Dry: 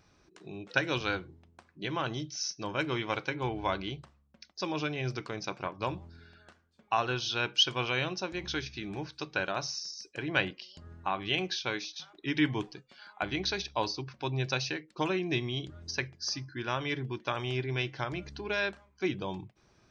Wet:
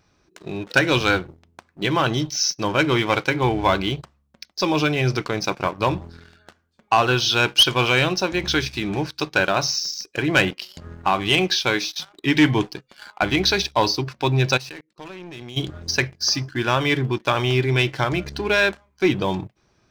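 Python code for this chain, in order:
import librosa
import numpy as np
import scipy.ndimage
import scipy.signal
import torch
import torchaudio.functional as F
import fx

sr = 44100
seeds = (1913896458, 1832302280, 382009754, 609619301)

y = fx.level_steps(x, sr, step_db=24, at=(14.56, 15.56), fade=0.02)
y = fx.leveller(y, sr, passes=2)
y = F.gain(torch.from_numpy(y), 6.0).numpy()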